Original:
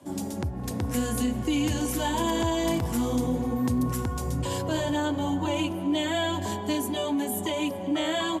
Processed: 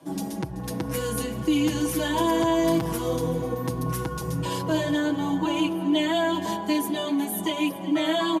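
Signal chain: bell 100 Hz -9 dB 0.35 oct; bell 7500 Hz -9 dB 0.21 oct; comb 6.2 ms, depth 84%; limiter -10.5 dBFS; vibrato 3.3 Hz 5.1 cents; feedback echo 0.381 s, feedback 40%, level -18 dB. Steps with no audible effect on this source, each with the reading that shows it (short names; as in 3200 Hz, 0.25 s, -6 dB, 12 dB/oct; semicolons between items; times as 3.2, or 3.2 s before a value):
limiter -10.5 dBFS: input peak -12.5 dBFS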